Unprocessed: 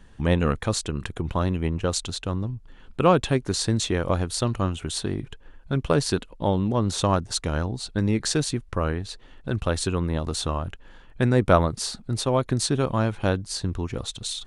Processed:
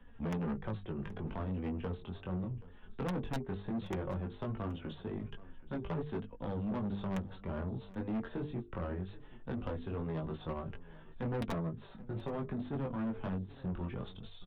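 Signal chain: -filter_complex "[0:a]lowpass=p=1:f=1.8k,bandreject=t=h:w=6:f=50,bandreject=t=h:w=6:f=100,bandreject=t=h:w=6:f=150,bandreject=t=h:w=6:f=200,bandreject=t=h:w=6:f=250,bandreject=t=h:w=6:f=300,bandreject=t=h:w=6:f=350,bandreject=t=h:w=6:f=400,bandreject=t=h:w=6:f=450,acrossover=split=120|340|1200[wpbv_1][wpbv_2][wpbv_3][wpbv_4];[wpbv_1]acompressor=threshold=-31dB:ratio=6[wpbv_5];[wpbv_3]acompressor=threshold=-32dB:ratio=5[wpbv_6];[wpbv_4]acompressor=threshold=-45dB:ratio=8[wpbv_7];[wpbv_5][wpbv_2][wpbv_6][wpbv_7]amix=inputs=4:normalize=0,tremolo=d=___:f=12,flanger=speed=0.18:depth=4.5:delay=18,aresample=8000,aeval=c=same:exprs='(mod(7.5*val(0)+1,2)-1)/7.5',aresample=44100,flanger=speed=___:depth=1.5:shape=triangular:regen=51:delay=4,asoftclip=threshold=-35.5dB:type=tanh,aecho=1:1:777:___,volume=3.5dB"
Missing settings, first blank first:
0.4, 0.62, 0.106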